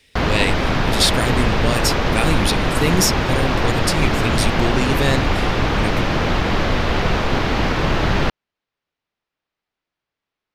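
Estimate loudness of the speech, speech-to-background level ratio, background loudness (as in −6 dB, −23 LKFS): −22.0 LKFS, −2.5 dB, −19.5 LKFS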